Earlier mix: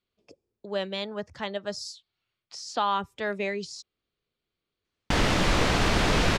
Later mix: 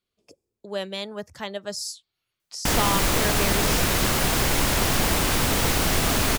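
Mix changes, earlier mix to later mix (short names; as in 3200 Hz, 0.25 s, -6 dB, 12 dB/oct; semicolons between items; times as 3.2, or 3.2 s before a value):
background: entry -2.45 s; master: remove LPF 4500 Hz 12 dB/oct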